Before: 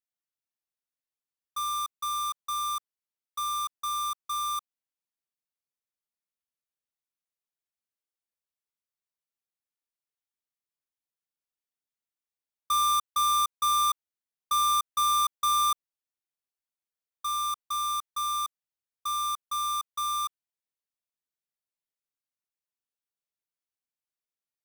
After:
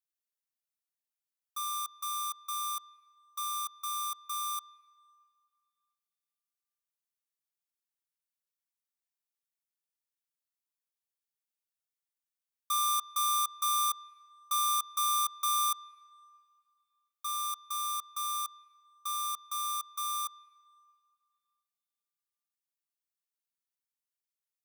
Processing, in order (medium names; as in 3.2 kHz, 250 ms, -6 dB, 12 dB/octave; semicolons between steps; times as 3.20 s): high-pass 870 Hz 24 dB/octave; treble shelf 5.7 kHz +8 dB; on a send: reverberation RT60 2.5 s, pre-delay 104 ms, DRR 22.5 dB; on the sum: trim -6 dB